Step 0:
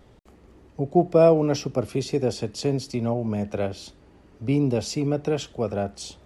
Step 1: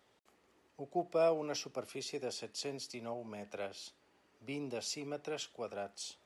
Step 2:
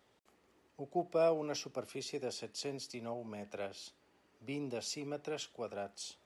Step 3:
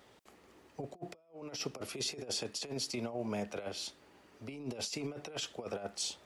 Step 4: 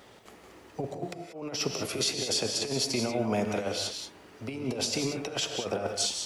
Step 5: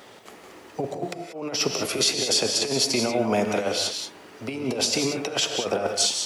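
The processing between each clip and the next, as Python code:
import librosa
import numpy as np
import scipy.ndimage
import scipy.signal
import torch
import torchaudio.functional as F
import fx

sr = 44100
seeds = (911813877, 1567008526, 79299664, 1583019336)

y1 = fx.highpass(x, sr, hz=1200.0, slope=6)
y1 = y1 * 10.0 ** (-7.0 / 20.0)
y2 = fx.low_shelf(y1, sr, hz=350.0, db=3.5)
y2 = y2 * 10.0 ** (-1.0 / 20.0)
y3 = fx.over_compress(y2, sr, threshold_db=-44.0, ratio=-0.5)
y3 = y3 * 10.0 ** (4.0 / 20.0)
y4 = fx.rev_gated(y3, sr, seeds[0], gate_ms=210, shape='rising', drr_db=4.5)
y4 = y4 * 10.0 ** (8.0 / 20.0)
y5 = fx.highpass(y4, sr, hz=210.0, slope=6)
y5 = y5 * 10.0 ** (7.0 / 20.0)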